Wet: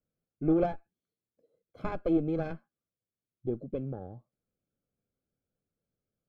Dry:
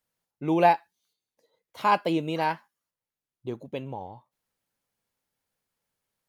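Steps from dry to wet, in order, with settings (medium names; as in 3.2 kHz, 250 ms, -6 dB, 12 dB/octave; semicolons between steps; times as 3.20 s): Chebyshev shaper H 6 -17 dB, 7 -28 dB, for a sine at -8 dBFS; compression 6:1, threshold -24 dBFS, peak gain reduction 10.5 dB; boxcar filter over 47 samples; trim +6.5 dB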